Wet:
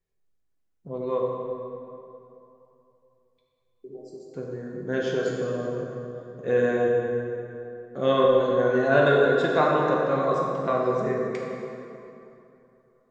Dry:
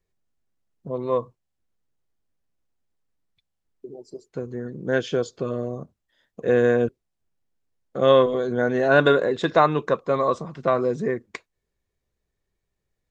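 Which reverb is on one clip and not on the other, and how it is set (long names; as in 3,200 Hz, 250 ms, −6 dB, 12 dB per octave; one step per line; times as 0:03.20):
dense smooth reverb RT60 3 s, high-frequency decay 0.6×, DRR −3 dB
level −6.5 dB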